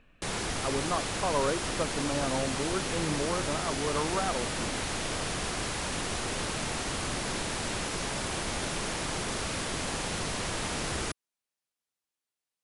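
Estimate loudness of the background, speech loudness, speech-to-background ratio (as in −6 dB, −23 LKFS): −32.0 LKFS, −33.5 LKFS, −1.5 dB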